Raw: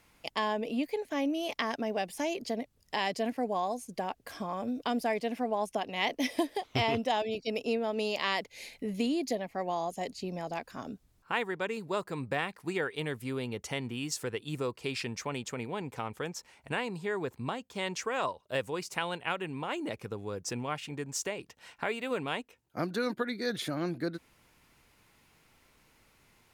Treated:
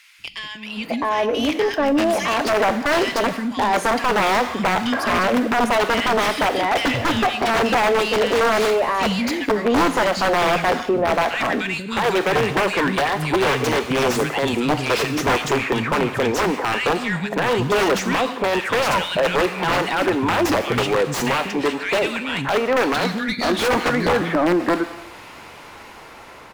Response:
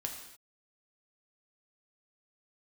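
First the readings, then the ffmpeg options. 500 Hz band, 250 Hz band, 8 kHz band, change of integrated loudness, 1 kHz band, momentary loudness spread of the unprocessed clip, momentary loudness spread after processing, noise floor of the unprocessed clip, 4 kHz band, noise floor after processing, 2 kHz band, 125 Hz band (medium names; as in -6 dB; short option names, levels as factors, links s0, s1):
+14.5 dB, +13.0 dB, +11.5 dB, +14.5 dB, +15.5 dB, 7 LU, 5 LU, -67 dBFS, +13.5 dB, -40 dBFS, +16.0 dB, +12.5 dB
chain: -filter_complex "[0:a]asplit=2[s0][s1];[s1]acompressor=threshold=0.00891:ratio=4,volume=0.794[s2];[s0][s2]amix=inputs=2:normalize=0,alimiter=limit=0.0668:level=0:latency=1:release=16,dynaudnorm=f=600:g=5:m=2,acrossover=split=220|1900[s3][s4][s5];[s3]adelay=190[s6];[s4]adelay=660[s7];[s6][s7][s5]amix=inputs=3:normalize=0,aeval=exprs='(mod(11.9*val(0)+1,2)-1)/11.9':c=same,asplit=2[s8][s9];[1:a]atrim=start_sample=2205[s10];[s9][s10]afir=irnorm=-1:irlink=0,volume=0.422[s11];[s8][s11]amix=inputs=2:normalize=0,asplit=2[s12][s13];[s13]highpass=f=720:p=1,volume=7.94,asoftclip=type=tanh:threshold=0.15[s14];[s12][s14]amix=inputs=2:normalize=0,lowpass=f=1400:p=1,volume=0.501,volume=2.24"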